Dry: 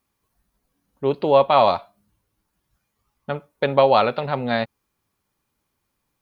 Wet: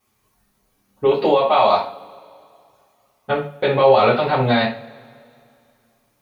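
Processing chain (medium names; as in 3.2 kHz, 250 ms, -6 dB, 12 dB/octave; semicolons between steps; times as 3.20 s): 1.04–3.30 s: bass shelf 150 Hz -11 dB; peak limiter -13.5 dBFS, peak gain reduction 11 dB; two-slope reverb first 0.34 s, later 2.5 s, from -27 dB, DRR -8.5 dB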